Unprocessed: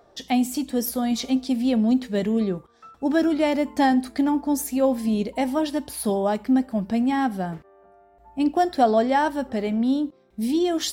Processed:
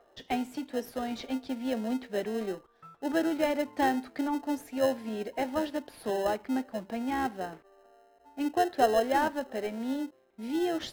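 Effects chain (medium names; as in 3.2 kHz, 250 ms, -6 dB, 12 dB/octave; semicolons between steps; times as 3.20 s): three-band isolator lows -21 dB, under 310 Hz, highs -17 dB, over 3.4 kHz; in parallel at -8 dB: sample-and-hold 38×; on the sum: trim -5.5 dB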